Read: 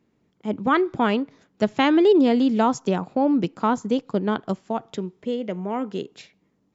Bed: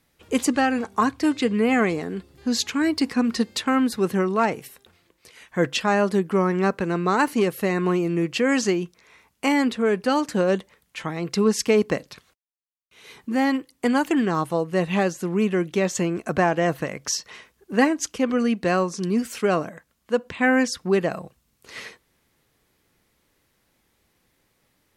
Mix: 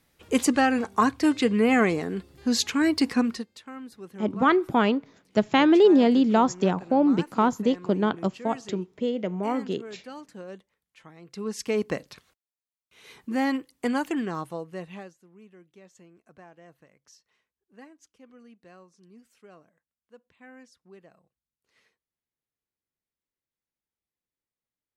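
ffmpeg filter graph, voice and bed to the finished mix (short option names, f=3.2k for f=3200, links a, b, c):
-filter_complex "[0:a]adelay=3750,volume=-0.5dB[a];[1:a]volume=15.5dB,afade=t=out:st=3.17:d=0.29:silence=0.105925,afade=t=in:st=11.27:d=0.78:silence=0.158489,afade=t=out:st=13.69:d=1.49:silence=0.0501187[b];[a][b]amix=inputs=2:normalize=0"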